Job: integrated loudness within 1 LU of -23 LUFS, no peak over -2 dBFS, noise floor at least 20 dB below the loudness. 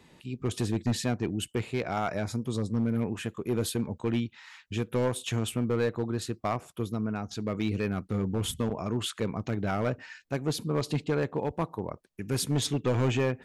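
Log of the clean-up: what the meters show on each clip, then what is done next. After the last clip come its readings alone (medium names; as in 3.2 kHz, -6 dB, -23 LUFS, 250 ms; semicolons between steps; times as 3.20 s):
clipped samples 1.2%; clipping level -20.5 dBFS; loudness -31.0 LUFS; peak level -20.5 dBFS; loudness target -23.0 LUFS
-> clip repair -20.5 dBFS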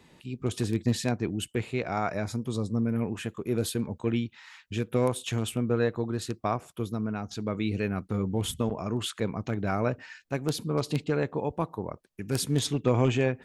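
clipped samples 0.0%; loudness -30.0 LUFS; peak level -11.5 dBFS; loudness target -23.0 LUFS
-> trim +7 dB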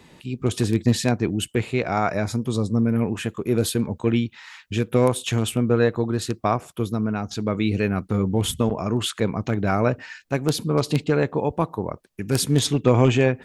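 loudness -23.0 LUFS; peak level -4.5 dBFS; noise floor -53 dBFS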